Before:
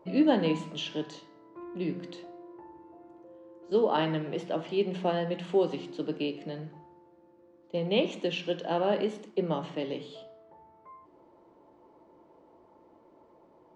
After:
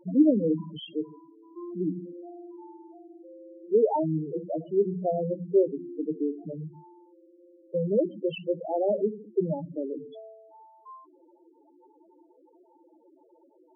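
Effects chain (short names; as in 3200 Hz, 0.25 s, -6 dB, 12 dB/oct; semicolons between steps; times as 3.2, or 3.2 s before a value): loudest bins only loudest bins 4; dynamic EQ 3000 Hz, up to -4 dB, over -54 dBFS, Q 1; gain +4.5 dB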